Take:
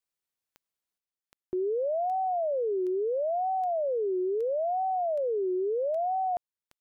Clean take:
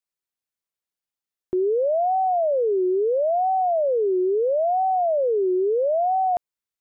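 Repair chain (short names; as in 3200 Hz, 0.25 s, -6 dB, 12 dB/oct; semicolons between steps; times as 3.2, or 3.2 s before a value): de-click; gain correction +7.5 dB, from 0.98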